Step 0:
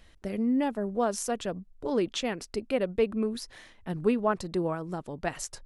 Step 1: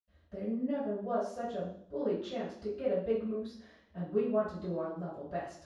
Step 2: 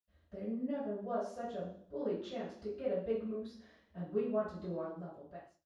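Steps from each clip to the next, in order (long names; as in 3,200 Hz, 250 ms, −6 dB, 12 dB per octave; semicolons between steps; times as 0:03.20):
convolution reverb RT60 0.60 s, pre-delay 77 ms; level −5.5 dB
fade-out on the ending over 0.79 s; level −4 dB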